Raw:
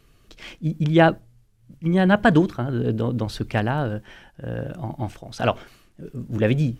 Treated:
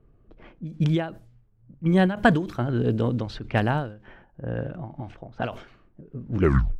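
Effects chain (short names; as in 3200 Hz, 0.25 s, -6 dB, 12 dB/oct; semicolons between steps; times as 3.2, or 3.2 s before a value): tape stop at the end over 0.45 s; low-pass opened by the level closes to 740 Hz, open at -17.5 dBFS; ending taper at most 120 dB/s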